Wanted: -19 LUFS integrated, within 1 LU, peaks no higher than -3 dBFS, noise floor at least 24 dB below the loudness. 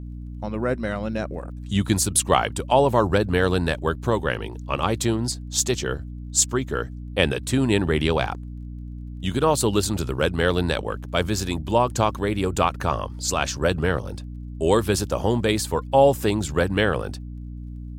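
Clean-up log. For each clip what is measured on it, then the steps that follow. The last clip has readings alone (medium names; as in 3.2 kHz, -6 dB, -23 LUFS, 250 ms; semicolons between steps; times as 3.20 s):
tick rate 22 per s; hum 60 Hz; highest harmonic 300 Hz; hum level -32 dBFS; loudness -23.0 LUFS; peak level -2.5 dBFS; loudness target -19.0 LUFS
-> de-click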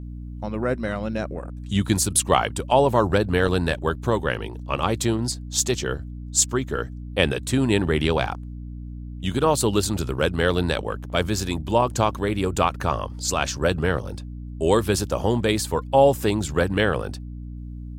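tick rate 0.22 per s; hum 60 Hz; highest harmonic 300 Hz; hum level -32 dBFS
-> hum notches 60/120/180/240/300 Hz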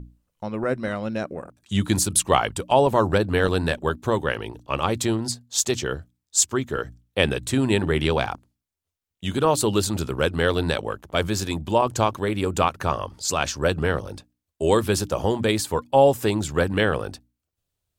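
hum not found; loudness -23.0 LUFS; peak level -2.0 dBFS; loudness target -19.0 LUFS
-> trim +4 dB; peak limiter -3 dBFS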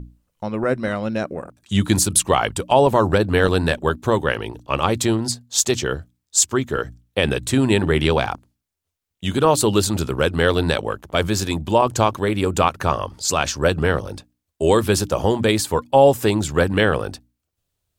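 loudness -19.5 LUFS; peak level -3.0 dBFS; noise floor -80 dBFS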